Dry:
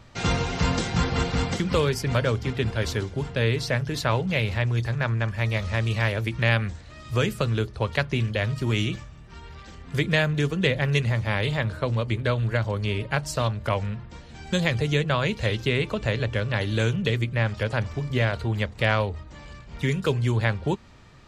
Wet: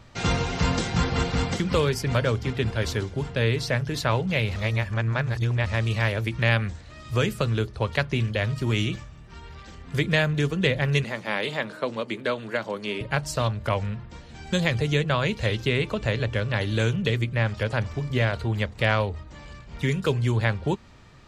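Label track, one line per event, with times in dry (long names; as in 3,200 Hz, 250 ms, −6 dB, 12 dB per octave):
4.560000	5.660000	reverse
11.040000	13.010000	high-pass filter 200 Hz 24 dB per octave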